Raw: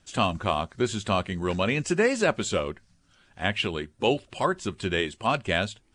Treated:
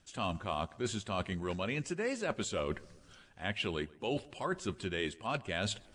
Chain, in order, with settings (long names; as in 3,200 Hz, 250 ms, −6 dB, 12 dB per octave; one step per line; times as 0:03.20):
reversed playback
downward compressor 6 to 1, threshold −38 dBFS, peak gain reduction 19 dB
reversed playback
tape delay 133 ms, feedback 54%, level −21.5 dB, low-pass 2,000 Hz
level +4.5 dB